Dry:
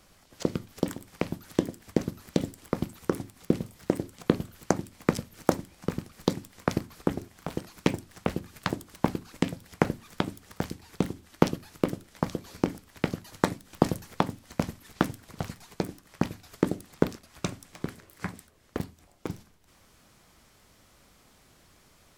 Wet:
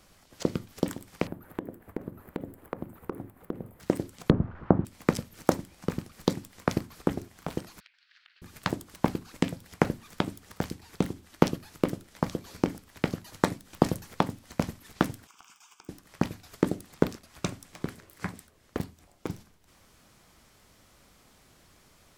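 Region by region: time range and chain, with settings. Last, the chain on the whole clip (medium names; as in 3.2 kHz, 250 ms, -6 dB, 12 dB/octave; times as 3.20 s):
1.27–3.80 s: FFT filter 220 Hz 0 dB, 480 Hz +5 dB, 1.7 kHz -2 dB, 5.7 kHz -26 dB, 14 kHz -1 dB + compression 3:1, threshold -32 dBFS
4.30–4.85 s: zero-crossing glitches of -19 dBFS + low-pass 1.3 kHz 24 dB/octave + bass shelf 260 Hz +10.5 dB
7.80–8.42 s: Chebyshev band-pass 1.5–4.5 kHz, order 3 + compression 16:1, threshold -54 dBFS
15.27–15.89 s: high-pass 890 Hz + compression 5:1, threshold -46 dBFS + static phaser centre 2.8 kHz, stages 8
whole clip: none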